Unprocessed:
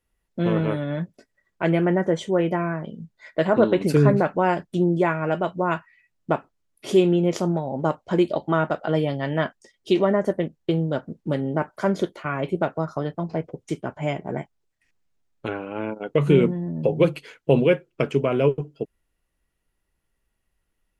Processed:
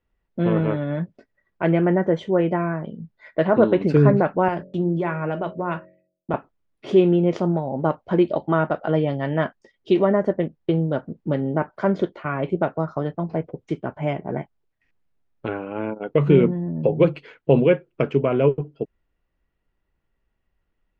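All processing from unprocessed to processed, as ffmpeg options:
-filter_complex "[0:a]asettb=1/sr,asplit=3[s0][s1][s2];[s0]atrim=end=4.484[s3];[s1]atrim=start=4.48:end=6.34,asetpts=PTS-STARTPTS,afade=t=in:d=0.004:c=qsin,afade=t=out:st=1.856:d=0.004:c=qsin,agate=range=0.0224:threshold=0.00447:ratio=3:release=100:detection=peak,acrossover=split=150|3000[s4][s5][s6];[s5]acompressor=threshold=0.0708:ratio=2.5:attack=3.2:release=140:knee=2.83:detection=peak[s7];[s4][s7][s6]amix=inputs=3:normalize=0,bandreject=f=45.63:t=h:w=4,bandreject=f=91.26:t=h:w=4,bandreject=f=136.89:t=h:w=4,bandreject=f=182.52:t=h:w=4,bandreject=f=228.15:t=h:w=4,bandreject=f=273.78:t=h:w=4,bandreject=f=319.41:t=h:w=4,bandreject=f=365.04:t=h:w=4,bandreject=f=410.67:t=h:w=4,bandreject=f=456.3:t=h:w=4,bandreject=f=501.93:t=h:w=4,bandreject=f=547.56:t=h:w=4,bandreject=f=593.19:t=h:w=4,bandreject=f=638.82:t=h:w=4[s8];[s2]atrim=start=6.336[s9];[s3][s8]acrossfade=d=0.004:c1=hsin:c2=qsin[s10];[s10][s9]acrossfade=d=0.004:c1=qsin:c2=hsin,lowpass=4900,aemphasis=mode=reproduction:type=75fm,volume=1.12"

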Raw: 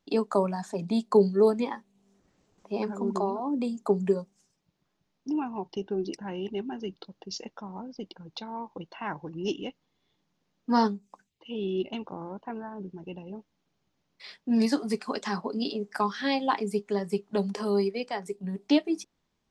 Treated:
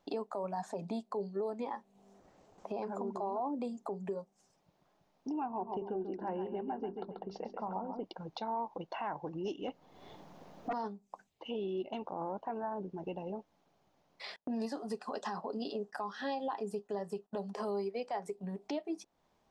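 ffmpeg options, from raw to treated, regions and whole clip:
-filter_complex "[0:a]asettb=1/sr,asplit=3[s0][s1][s2];[s0]atrim=end=5.464[s3];[s1]atrim=start=5.46:end=8.04,asetpts=PTS-STARTPTS,afade=t=in:d=0.004:c=qsin,afade=t=out:st=2.576:d=0.004:c=qsin,lowpass=1700,bandreject=f=50:t=h:w=6,bandreject=f=100:t=h:w=6,bandreject=f=150:t=h:w=6,bandreject=f=200:t=h:w=6,bandreject=f=250:t=h:w=6,bandreject=f=300:t=h:w=6,bandreject=f=350:t=h:w=6,bandreject=f=400:t=h:w=6,aecho=1:1:137|274|411:0.376|0.105|0.0295,atrim=end_sample=113778[s4];[s2]atrim=start=8.036[s5];[s3][s4]acrossfade=d=0.004:c1=hsin:c2=qsin[s6];[s6][s5]acrossfade=d=0.004:c1=qsin:c2=hsin,asettb=1/sr,asplit=3[s7][s8][s9];[s7]atrim=end=9.684[s10];[s8]atrim=start=9.68:end=10.73,asetpts=PTS-STARTPTS,afade=t=in:d=0.004:c=qsin,afade=t=out:st=1.046:d=0.004:c=qsin,lowpass=f=1000:p=1,aemphasis=mode=production:type=75kf,aeval=exprs='0.15*sin(PI/2*5.62*val(0)/0.15)':c=same[s11];[s9]atrim=start=10.726[s12];[s10][s11]acrossfade=d=0.004:c1=hsin:c2=qsin[s13];[s13][s12]acrossfade=d=0.004:c1=qsin:c2=hsin,asettb=1/sr,asplit=3[s14][s15][s16];[s14]atrim=end=14.364[s17];[s15]atrim=start=14.36:end=17.53,asetpts=PTS-STARTPTS,afade=t=in:d=0.004:c=qsin,afade=t=out:st=3.166:d=0.004:c=qsin,asuperstop=centerf=2200:order=8:qfactor=5.5,agate=range=0.0631:threshold=0.00224:ratio=16:release=100:detection=peak[s18];[s16]atrim=start=17.526[s19];[s17][s18]acrossfade=d=0.004:c1=hsin:c2=qsin[s20];[s20][s19]acrossfade=d=0.004:c1=qsin:c2=hsin,acompressor=threshold=0.00708:ratio=3,equalizer=f=710:w=0.92:g=12.5,alimiter=level_in=1.68:limit=0.0631:level=0:latency=1:release=31,volume=0.596"

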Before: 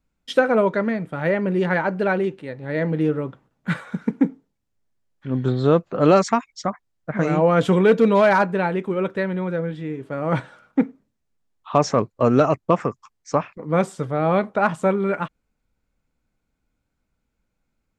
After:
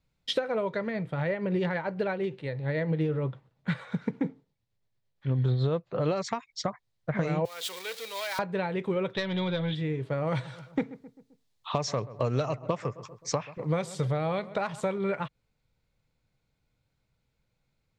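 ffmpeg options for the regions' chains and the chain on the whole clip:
-filter_complex "[0:a]asettb=1/sr,asplit=3[s0][s1][s2];[s0]atrim=end=0.874[s3];[s1]atrim=start=0.87:end=6.24,asetpts=PTS-STARTPTS,afade=t=in:d=0.004:c=qsin,afade=t=out:st=5.366:d=0.004:c=qsin,highshelf=f=5900:g=-6,tremolo=f=8.8:d=0.37[s4];[s2]atrim=start=6.236[s5];[s3][s4]acrossfade=d=0.004:c1=hsin:c2=qsin[s6];[s6][s5]acrossfade=d=0.004:c1=qsin:c2=hsin,asettb=1/sr,asplit=3[s7][s8][s9];[s7]atrim=end=7.454[s10];[s8]atrim=start=7.45:end=8.39,asetpts=PTS-STARTPTS,afade=t=in:d=0.004:c=qsin,afade=t=out:st=0.936:d=0.004:c=qsin,aeval=exprs='val(0)+0.5*0.0422*sgn(val(0))':c=same,highpass=320,aderivative[s11];[s9]atrim=start=8.386[s12];[s10][s11]acrossfade=d=0.004:c1=hsin:c2=qsin[s13];[s13][s12]acrossfade=d=0.004:c1=qsin:c2=hsin,asettb=1/sr,asplit=3[s14][s15][s16];[s14]atrim=end=9.134[s17];[s15]atrim=start=9.13:end=9.75,asetpts=PTS-STARTPTS,afade=t=in:d=0.004:c=qsin,afade=t=out:st=0.616:d=0.004:c=qsin,lowpass=f=3500:t=q:w=9.3,aeval=exprs='(tanh(6.31*val(0)+0.25)-tanh(0.25))/6.31':c=same,bandreject=f=480:w=7[s18];[s16]atrim=start=9.746[s19];[s17][s18]acrossfade=d=0.004:c1=hsin:c2=qsin[s20];[s20][s19]acrossfade=d=0.004:c1=qsin:c2=hsin,asettb=1/sr,asplit=3[s21][s22][s23];[s21]atrim=end=10.274[s24];[s22]atrim=start=10.27:end=14.98,asetpts=PTS-STARTPTS,afade=t=in:d=0.004:c=qsin,afade=t=out:st=4.706:d=0.004:c=qsin,highshelf=f=3500:g=9,asplit=2[s25][s26];[s26]adelay=131,lowpass=f=1500:p=1,volume=0.1,asplit=2[s27][s28];[s28]adelay=131,lowpass=f=1500:p=1,volume=0.5,asplit=2[s29][s30];[s30]adelay=131,lowpass=f=1500:p=1,volume=0.5,asplit=2[s31][s32];[s32]adelay=131,lowpass=f=1500:p=1,volume=0.5[s33];[s25][s27][s29][s31][s33]amix=inputs=5:normalize=0,atrim=end_sample=207711[s34];[s23]atrim=start=14.976[s35];[s24][s34]acrossfade=d=0.004:c1=hsin:c2=qsin[s36];[s36][s35]acrossfade=d=0.004:c1=qsin:c2=hsin,equalizer=f=125:t=o:w=1:g=12,equalizer=f=250:t=o:w=1:g=-5,equalizer=f=500:t=o:w=1:g=6,equalizer=f=1000:t=o:w=1:g=7,equalizer=f=2000:t=o:w=1:g=10,equalizer=f=4000:t=o:w=1:g=11,acompressor=threshold=0.126:ratio=6,equalizer=f=1500:w=0.62:g=-9,volume=0.596"

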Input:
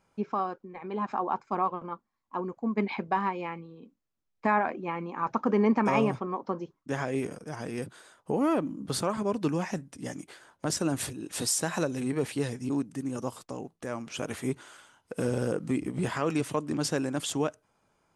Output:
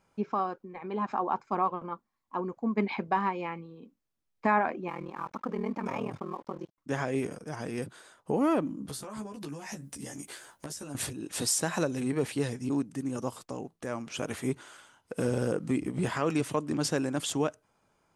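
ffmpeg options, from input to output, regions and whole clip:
-filter_complex "[0:a]asettb=1/sr,asplit=3[s0][s1][s2];[s0]atrim=end=4.884[s3];[s1]atrim=start=4.88:end=6.78,asetpts=PTS-STARTPTS,afade=t=in:d=0.004:c=qsin,afade=t=out:st=1.896:d=0.004:c=qsin,acompressor=threshold=0.0355:ratio=2.5:attack=3.2:release=140:knee=1:detection=peak,aeval=exprs='val(0)*sin(2*PI*20*n/s)':c=same,aeval=exprs='sgn(val(0))*max(abs(val(0))-0.00119,0)':c=same[s4];[s2]atrim=start=6.776[s5];[s3][s4]acrossfade=d=0.004:c1=hsin:c2=qsin[s6];[s6][s5]acrossfade=d=0.004:c1=qsin:c2=hsin,asettb=1/sr,asplit=3[s7][s8][s9];[s7]atrim=end=8.884[s10];[s8]atrim=start=8.88:end=10.95,asetpts=PTS-STARTPTS,afade=t=in:d=0.004:c=qsin,afade=t=out:st=2.066:d=0.004:c=qsin,aemphasis=mode=production:type=50kf,acompressor=threshold=0.0141:ratio=20:attack=3.2:release=140:knee=1:detection=peak,asplit=2[s11][s12];[s12]adelay=14,volume=0.75[s13];[s11][s13]amix=inputs=2:normalize=0,atrim=end_sample=91287[s14];[s9]atrim=start=10.946[s15];[s10][s14]acrossfade=d=0.004:c1=hsin:c2=qsin[s16];[s16][s15]acrossfade=d=0.004:c1=qsin:c2=hsin"

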